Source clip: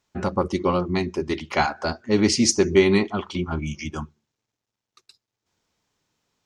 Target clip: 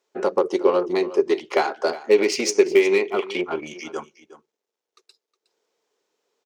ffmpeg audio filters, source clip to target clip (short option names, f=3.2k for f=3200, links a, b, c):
-filter_complex "[0:a]asettb=1/sr,asplit=3[a][b][c];[a]atrim=end=2.094[d];[b]atrim=start=2.09:end=3.61,asetpts=PTS-STARTPTS,afade=t=in:d=0.004:c=qsin,afade=t=out:st=1.516:d=0.004:c=qsin,equalizer=f=2.4k:t=o:w=0.6:g=11[e];[c]atrim=start=3.606[f];[d][e]acrossfade=d=0.004:c1=hsin:c2=qsin[g];[g][f]acrossfade=d=0.004:c1=qsin:c2=hsin,acompressor=threshold=-19dB:ratio=6,aeval=exprs='0.266*(cos(1*acos(clip(val(0)/0.266,-1,1)))-cos(1*PI/2))+0.0119*(cos(6*acos(clip(val(0)/0.266,-1,1)))-cos(6*PI/2))+0.00944*(cos(7*acos(clip(val(0)/0.266,-1,1)))-cos(7*PI/2))+0.0075*(cos(8*acos(clip(val(0)/0.266,-1,1)))-cos(8*PI/2))':c=same,highpass=f=430:t=q:w=4.2,aecho=1:1:364:0.15"